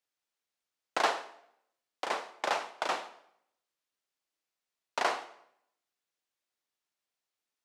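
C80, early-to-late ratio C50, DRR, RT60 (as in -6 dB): 16.5 dB, 14.0 dB, 12.0 dB, 0.70 s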